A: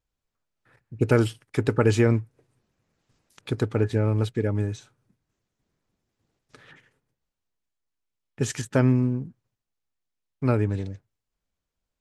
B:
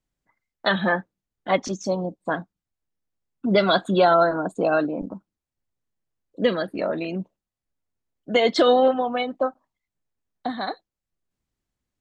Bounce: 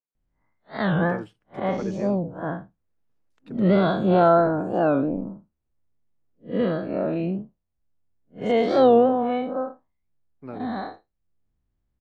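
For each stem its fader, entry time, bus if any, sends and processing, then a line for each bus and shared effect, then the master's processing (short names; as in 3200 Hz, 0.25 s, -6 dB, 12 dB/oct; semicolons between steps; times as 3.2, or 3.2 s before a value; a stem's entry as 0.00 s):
-12.0 dB, 0.00 s, no send, HPF 220 Hz 12 dB/oct
+2.5 dB, 0.15 s, no send, time blur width 0.137 s; low shelf 140 Hz +10.5 dB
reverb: off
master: LPF 1400 Hz 6 dB/oct; record warp 45 rpm, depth 160 cents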